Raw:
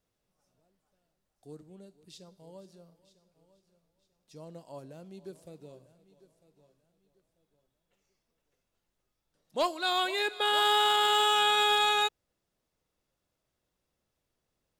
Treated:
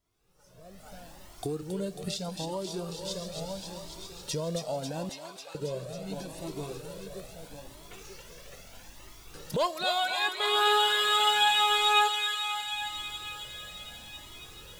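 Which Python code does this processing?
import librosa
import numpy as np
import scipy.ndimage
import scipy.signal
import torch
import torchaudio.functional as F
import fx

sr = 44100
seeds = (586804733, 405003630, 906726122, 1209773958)

p1 = fx.recorder_agc(x, sr, target_db=-25.0, rise_db_per_s=34.0, max_gain_db=30)
p2 = fx.brickwall_bandpass(p1, sr, low_hz=540.0, high_hz=4800.0, at=(5.09, 5.55))
p3 = p2 + fx.echo_thinned(p2, sr, ms=272, feedback_pct=79, hz=750.0, wet_db=-5.0, dry=0)
p4 = fx.comb_cascade(p3, sr, direction='rising', hz=0.77)
y = p4 * 10.0 ** (4.5 / 20.0)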